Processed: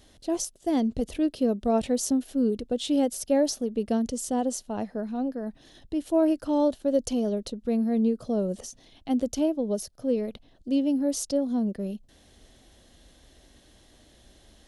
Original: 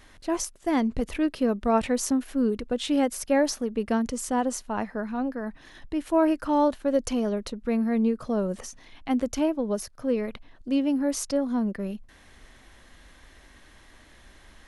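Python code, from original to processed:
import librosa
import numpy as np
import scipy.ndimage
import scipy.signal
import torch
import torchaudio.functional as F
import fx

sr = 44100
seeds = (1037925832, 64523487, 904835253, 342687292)

y = fx.highpass(x, sr, hz=44.0, slope=6)
y = fx.band_shelf(y, sr, hz=1500.0, db=-11.0, octaves=1.7)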